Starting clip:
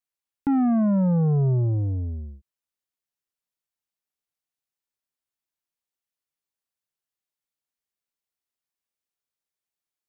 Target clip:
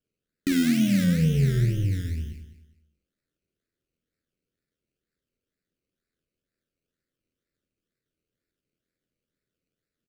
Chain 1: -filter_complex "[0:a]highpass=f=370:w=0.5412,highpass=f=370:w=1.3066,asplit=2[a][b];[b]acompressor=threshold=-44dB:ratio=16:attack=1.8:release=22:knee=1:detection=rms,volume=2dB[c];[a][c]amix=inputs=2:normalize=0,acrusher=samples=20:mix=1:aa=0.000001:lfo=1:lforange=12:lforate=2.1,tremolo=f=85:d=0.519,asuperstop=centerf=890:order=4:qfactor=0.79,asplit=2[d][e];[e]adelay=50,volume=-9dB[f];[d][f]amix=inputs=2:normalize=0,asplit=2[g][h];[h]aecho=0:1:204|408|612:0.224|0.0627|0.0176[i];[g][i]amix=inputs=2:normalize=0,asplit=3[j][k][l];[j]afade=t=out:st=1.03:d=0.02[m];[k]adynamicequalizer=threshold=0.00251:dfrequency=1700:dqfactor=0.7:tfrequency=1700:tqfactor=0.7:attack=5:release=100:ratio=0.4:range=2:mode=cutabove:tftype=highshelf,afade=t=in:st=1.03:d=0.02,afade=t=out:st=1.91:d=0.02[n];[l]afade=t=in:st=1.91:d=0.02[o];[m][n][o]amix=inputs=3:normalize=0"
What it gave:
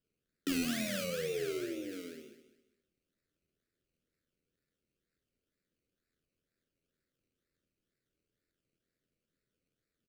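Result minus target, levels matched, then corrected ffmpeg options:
500 Hz band +12.5 dB
-filter_complex "[0:a]asplit=2[a][b];[b]acompressor=threshold=-44dB:ratio=16:attack=1.8:release=22:knee=1:detection=rms,volume=2dB[c];[a][c]amix=inputs=2:normalize=0,acrusher=samples=20:mix=1:aa=0.000001:lfo=1:lforange=12:lforate=2.1,tremolo=f=85:d=0.519,asuperstop=centerf=890:order=4:qfactor=0.79,asplit=2[d][e];[e]adelay=50,volume=-9dB[f];[d][f]amix=inputs=2:normalize=0,asplit=2[g][h];[h]aecho=0:1:204|408|612:0.224|0.0627|0.0176[i];[g][i]amix=inputs=2:normalize=0,asplit=3[j][k][l];[j]afade=t=out:st=1.03:d=0.02[m];[k]adynamicequalizer=threshold=0.00251:dfrequency=1700:dqfactor=0.7:tfrequency=1700:tqfactor=0.7:attack=5:release=100:ratio=0.4:range=2:mode=cutabove:tftype=highshelf,afade=t=in:st=1.03:d=0.02,afade=t=out:st=1.91:d=0.02[n];[l]afade=t=in:st=1.91:d=0.02[o];[m][n][o]amix=inputs=3:normalize=0"

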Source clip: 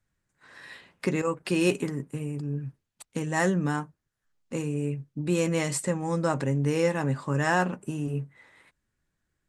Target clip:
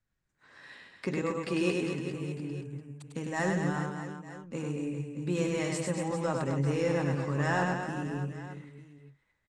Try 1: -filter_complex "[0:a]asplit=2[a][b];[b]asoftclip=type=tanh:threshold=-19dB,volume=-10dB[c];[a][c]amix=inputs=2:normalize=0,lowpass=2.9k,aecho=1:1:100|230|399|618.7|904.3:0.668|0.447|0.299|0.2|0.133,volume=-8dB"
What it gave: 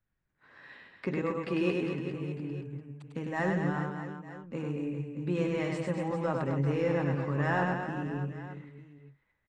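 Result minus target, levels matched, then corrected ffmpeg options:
8000 Hz band -14.0 dB
-filter_complex "[0:a]asplit=2[a][b];[b]asoftclip=type=tanh:threshold=-19dB,volume=-10dB[c];[a][c]amix=inputs=2:normalize=0,lowpass=7.2k,aecho=1:1:100|230|399|618.7|904.3:0.668|0.447|0.299|0.2|0.133,volume=-8dB"

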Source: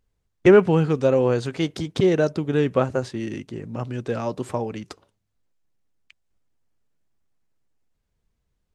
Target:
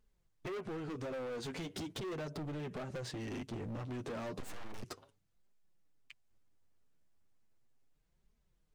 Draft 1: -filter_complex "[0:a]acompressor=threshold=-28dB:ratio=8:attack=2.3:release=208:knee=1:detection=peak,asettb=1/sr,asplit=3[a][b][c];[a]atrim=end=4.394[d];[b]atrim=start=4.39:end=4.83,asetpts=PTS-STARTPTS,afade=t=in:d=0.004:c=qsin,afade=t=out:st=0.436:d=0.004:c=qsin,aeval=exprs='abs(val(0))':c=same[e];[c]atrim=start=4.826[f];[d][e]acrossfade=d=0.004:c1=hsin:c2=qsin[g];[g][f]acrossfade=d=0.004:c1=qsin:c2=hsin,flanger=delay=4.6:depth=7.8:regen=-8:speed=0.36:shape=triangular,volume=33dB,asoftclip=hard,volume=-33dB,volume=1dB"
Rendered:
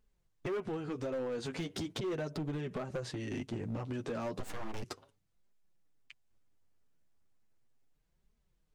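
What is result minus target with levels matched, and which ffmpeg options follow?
overloaded stage: distortion -6 dB
-filter_complex "[0:a]acompressor=threshold=-28dB:ratio=8:attack=2.3:release=208:knee=1:detection=peak,asettb=1/sr,asplit=3[a][b][c];[a]atrim=end=4.394[d];[b]atrim=start=4.39:end=4.83,asetpts=PTS-STARTPTS,afade=t=in:d=0.004:c=qsin,afade=t=out:st=0.436:d=0.004:c=qsin,aeval=exprs='abs(val(0))':c=same[e];[c]atrim=start=4.826[f];[d][e]acrossfade=d=0.004:c1=hsin:c2=qsin[g];[g][f]acrossfade=d=0.004:c1=qsin:c2=hsin,flanger=delay=4.6:depth=7.8:regen=-8:speed=0.36:shape=triangular,volume=39.5dB,asoftclip=hard,volume=-39.5dB,volume=1dB"

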